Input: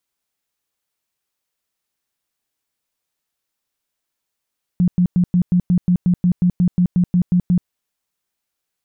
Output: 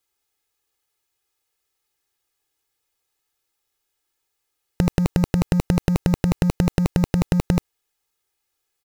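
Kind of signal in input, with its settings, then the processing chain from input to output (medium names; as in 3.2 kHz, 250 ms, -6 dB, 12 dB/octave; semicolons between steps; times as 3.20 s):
tone bursts 178 Hz, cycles 14, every 0.18 s, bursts 16, -11 dBFS
comb 2.4 ms, depth 93%; in parallel at -8 dB: companded quantiser 2-bit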